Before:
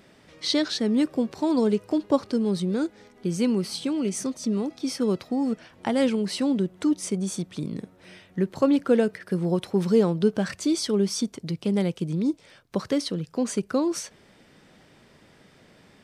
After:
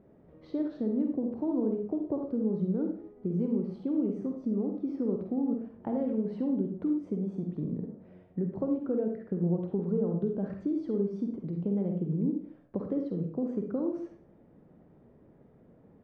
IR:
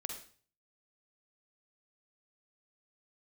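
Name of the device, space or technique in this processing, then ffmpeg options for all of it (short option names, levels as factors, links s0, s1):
television next door: -filter_complex "[0:a]acompressor=threshold=0.0562:ratio=4,lowpass=590[s0];[1:a]atrim=start_sample=2205[s1];[s0][s1]afir=irnorm=-1:irlink=0"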